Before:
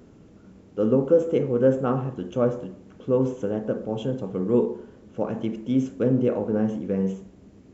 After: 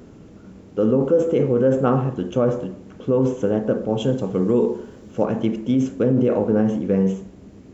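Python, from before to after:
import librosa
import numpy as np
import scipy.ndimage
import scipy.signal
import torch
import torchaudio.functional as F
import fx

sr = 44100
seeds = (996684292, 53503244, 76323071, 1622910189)

p1 = fx.high_shelf(x, sr, hz=5200.0, db=9.0, at=(4.0, 5.25))
p2 = fx.over_compress(p1, sr, threshold_db=-23.0, ratio=-0.5)
y = p1 + (p2 * librosa.db_to_amplitude(-1.0))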